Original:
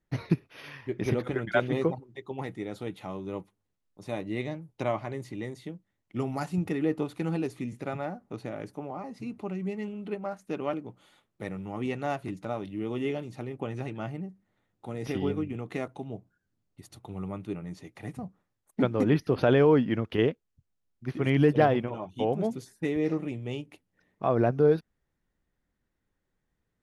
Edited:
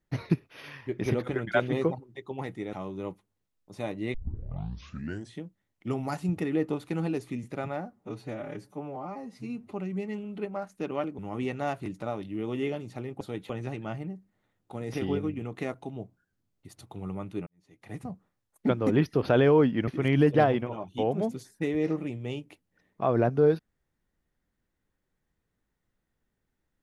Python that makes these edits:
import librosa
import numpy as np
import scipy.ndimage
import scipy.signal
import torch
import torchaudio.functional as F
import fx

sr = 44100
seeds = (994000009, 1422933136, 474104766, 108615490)

y = fx.edit(x, sr, fx.move(start_s=2.73, length_s=0.29, to_s=13.63),
    fx.tape_start(start_s=4.43, length_s=1.27),
    fx.stretch_span(start_s=8.22, length_s=1.19, factor=1.5),
    fx.cut(start_s=10.88, length_s=0.73),
    fx.fade_in_span(start_s=17.6, length_s=0.5, curve='qua'),
    fx.cut(start_s=20.01, length_s=1.08), tone=tone)